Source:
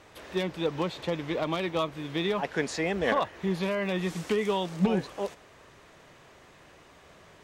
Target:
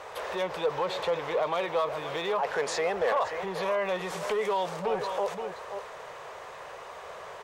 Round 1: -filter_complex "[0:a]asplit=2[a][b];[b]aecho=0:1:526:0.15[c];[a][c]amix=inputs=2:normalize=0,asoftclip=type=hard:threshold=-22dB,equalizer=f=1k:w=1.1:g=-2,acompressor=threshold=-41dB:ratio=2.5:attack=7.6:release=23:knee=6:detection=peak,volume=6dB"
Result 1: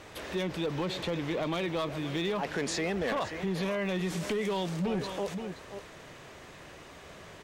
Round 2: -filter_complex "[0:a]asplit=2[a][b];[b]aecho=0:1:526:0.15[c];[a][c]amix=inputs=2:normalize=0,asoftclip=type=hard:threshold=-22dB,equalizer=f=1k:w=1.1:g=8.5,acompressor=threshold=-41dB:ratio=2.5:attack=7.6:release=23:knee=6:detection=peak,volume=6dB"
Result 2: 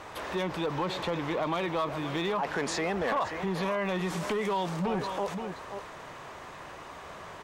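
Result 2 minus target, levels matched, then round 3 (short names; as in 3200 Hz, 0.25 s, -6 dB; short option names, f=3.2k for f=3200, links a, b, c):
500 Hz band -2.5 dB
-filter_complex "[0:a]asplit=2[a][b];[b]aecho=0:1:526:0.15[c];[a][c]amix=inputs=2:normalize=0,asoftclip=type=hard:threshold=-22dB,equalizer=f=1k:w=1.1:g=8.5,acompressor=threshold=-41dB:ratio=2.5:attack=7.6:release=23:knee=6:detection=peak,lowshelf=f=370:t=q:w=3:g=-7.5,volume=6dB"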